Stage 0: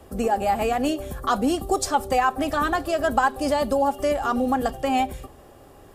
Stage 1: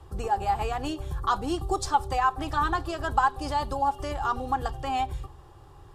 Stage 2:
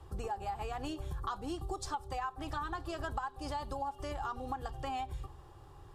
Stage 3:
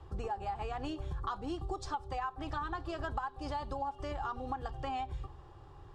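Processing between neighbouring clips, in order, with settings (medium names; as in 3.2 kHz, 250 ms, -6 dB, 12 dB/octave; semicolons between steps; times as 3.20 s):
FFT filter 140 Hz 0 dB, 230 Hz -22 dB, 340 Hz -7 dB, 620 Hz -18 dB, 890 Hz -2 dB, 2.2 kHz -12 dB, 3.7 kHz -6 dB, 9 kHz -13 dB, 15 kHz -20 dB; trim +3.5 dB
compression 6:1, threshold -31 dBFS, peak gain reduction 13.5 dB; trim -4 dB
distance through air 90 m; trim +1 dB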